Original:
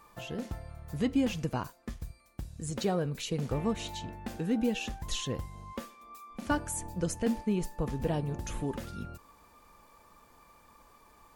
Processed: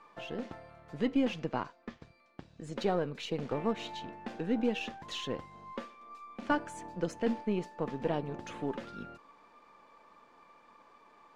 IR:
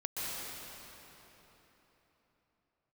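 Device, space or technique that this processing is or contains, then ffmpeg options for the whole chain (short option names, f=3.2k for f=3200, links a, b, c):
crystal radio: -filter_complex "[0:a]highpass=240,lowpass=3.5k,aeval=exprs='if(lt(val(0),0),0.708*val(0),val(0))':c=same,asettb=1/sr,asplit=3[a][b][c];[a]atrim=end=1.394[d];[b]atrim=start=1.39:end=2.64,asetpts=PTS-STARTPTS,afade=t=in:d=0.004:c=qsin,afade=t=out:st=1.246:d=0.004:c=qsin,lowpass=6.3k[e];[c]atrim=start=2.636[f];[d][e]acrossfade=d=0.004:c1=hsin:c2=qsin[g];[g][f]acrossfade=d=0.004:c1=qsin:c2=hsin,volume=2dB"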